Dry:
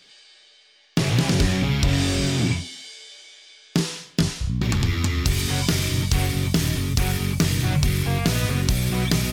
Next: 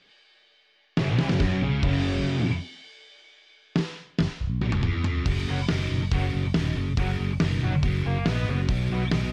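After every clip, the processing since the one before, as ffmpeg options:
-af "lowpass=2900,volume=0.75"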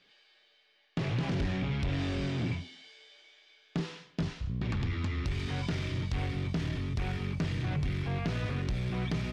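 -af "asoftclip=type=tanh:threshold=0.119,volume=0.501"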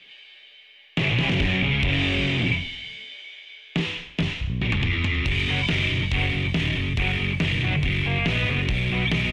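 -filter_complex "[0:a]acrossover=split=280|2900[s0][s1][s2];[s1]aexciter=amount=11.3:drive=2.8:freq=2200[s3];[s0][s3][s2]amix=inputs=3:normalize=0,asplit=6[s4][s5][s6][s7][s8][s9];[s5]adelay=104,afreqshift=-72,volume=0.126[s10];[s6]adelay=208,afreqshift=-144,volume=0.0692[s11];[s7]adelay=312,afreqshift=-216,volume=0.038[s12];[s8]adelay=416,afreqshift=-288,volume=0.0209[s13];[s9]adelay=520,afreqshift=-360,volume=0.0115[s14];[s4][s10][s11][s12][s13][s14]amix=inputs=6:normalize=0,volume=2.37"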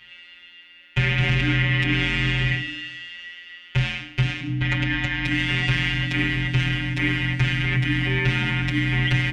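-af "afftfilt=real='hypot(re,im)*cos(PI*b)':imag='0':win_size=1024:overlap=0.75,afreqshift=-300,volume=1.78"

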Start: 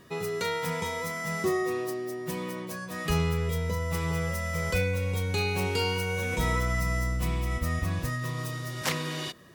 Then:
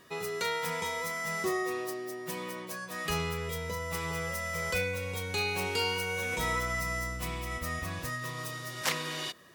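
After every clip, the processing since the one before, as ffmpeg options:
-af "lowshelf=f=330:g=-11"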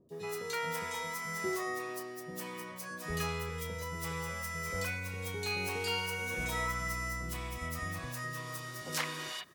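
-filter_complex "[0:a]acrossover=split=570|3400[s0][s1][s2];[s2]adelay=90[s3];[s1]adelay=120[s4];[s0][s4][s3]amix=inputs=3:normalize=0,volume=0.75"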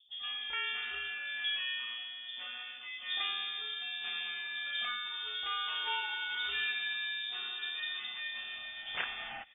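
-af "lowpass=f=3100:t=q:w=0.5098,lowpass=f=3100:t=q:w=0.6013,lowpass=f=3100:t=q:w=0.9,lowpass=f=3100:t=q:w=2.563,afreqshift=-3700"

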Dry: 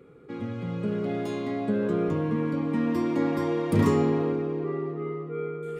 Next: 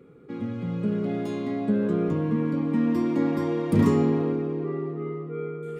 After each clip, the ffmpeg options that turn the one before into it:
-af "equalizer=f=210:w=1.1:g=6,volume=0.794"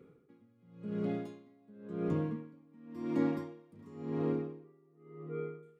-af "aeval=exprs='val(0)*pow(10,-30*(0.5-0.5*cos(2*PI*0.93*n/s))/20)':c=same,volume=0.501"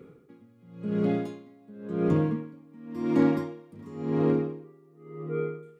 -af "asoftclip=type=hard:threshold=0.075,volume=2.82"

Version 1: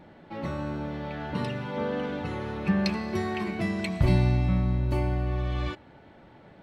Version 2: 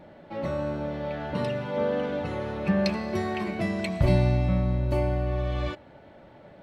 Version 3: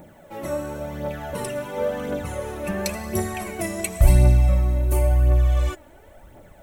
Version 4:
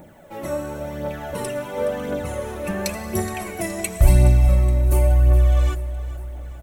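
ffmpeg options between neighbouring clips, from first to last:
-af "equalizer=f=590:w=4.2:g=8.5"
-af "asubboost=boost=6.5:cutoff=56,aexciter=amount=15.1:drive=3.4:freq=6600,aphaser=in_gain=1:out_gain=1:delay=3.5:decay=0.5:speed=0.94:type=triangular"
-af "aecho=1:1:420|840|1260|1680|2100:0.168|0.0907|0.049|0.0264|0.0143,volume=1.12"

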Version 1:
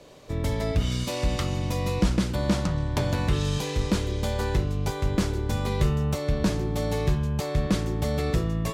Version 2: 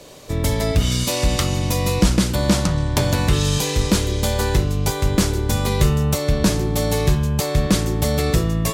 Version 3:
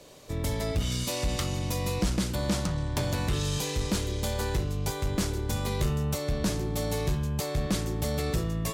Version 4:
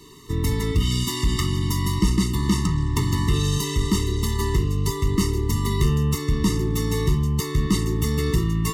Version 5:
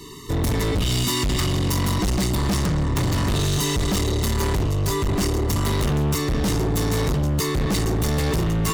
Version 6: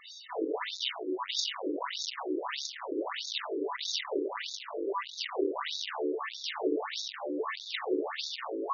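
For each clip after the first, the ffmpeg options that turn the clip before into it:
-af "highshelf=f=5500:g=11.5,volume=2.11"
-af "asoftclip=type=tanh:threshold=0.316,volume=0.355"
-af "afftfilt=real='re*eq(mod(floor(b*sr/1024/440),2),0)':imag='im*eq(mod(floor(b*sr/1024/440),2),0)':win_size=1024:overlap=0.75,volume=2.51"
-af "asoftclip=type=hard:threshold=0.0473,volume=2.24"
-af "afftfilt=real='re*between(b*sr/1024,370*pow(5000/370,0.5+0.5*sin(2*PI*1.6*pts/sr))/1.41,370*pow(5000/370,0.5+0.5*sin(2*PI*1.6*pts/sr))*1.41)':imag='im*between(b*sr/1024,370*pow(5000/370,0.5+0.5*sin(2*PI*1.6*pts/sr))/1.41,370*pow(5000/370,0.5+0.5*sin(2*PI*1.6*pts/sr))*1.41)':win_size=1024:overlap=0.75"

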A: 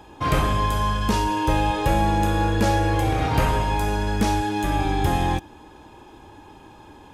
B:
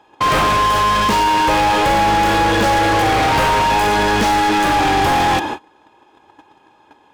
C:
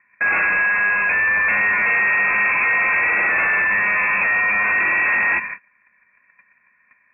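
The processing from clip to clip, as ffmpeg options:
-filter_complex "[0:a]agate=range=0.0282:threshold=0.01:ratio=16:detection=peak,asplit=2[s0][s1];[s1]highpass=f=720:p=1,volume=63.1,asoftclip=type=tanh:threshold=0.398[s2];[s0][s2]amix=inputs=2:normalize=0,lowpass=f=2800:p=1,volume=0.501"
-filter_complex "[0:a]asplit=2[s0][s1];[s1]acrusher=bits=2:mix=0:aa=0.5,volume=0.531[s2];[s0][s2]amix=inputs=2:normalize=0,lowpass=f=2300:t=q:w=0.5098,lowpass=f=2300:t=q:w=0.6013,lowpass=f=2300:t=q:w=0.9,lowpass=f=2300:t=q:w=2.563,afreqshift=-2700,volume=0.422"

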